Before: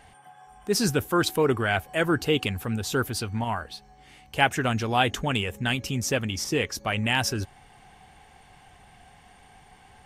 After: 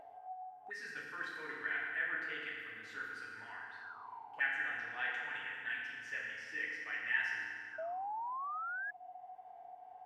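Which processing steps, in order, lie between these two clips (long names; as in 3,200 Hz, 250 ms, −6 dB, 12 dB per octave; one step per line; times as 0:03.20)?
feedback delay network reverb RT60 2.2 s, low-frequency decay 1.1×, high-frequency decay 0.7×, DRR −5.5 dB
envelope filter 640–1,800 Hz, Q 12, up, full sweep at −21.5 dBFS
sound drawn into the spectrogram rise, 0:07.78–0:08.91, 630–1,700 Hz −37 dBFS
upward compression, threshold −42 dBFS
level −3.5 dB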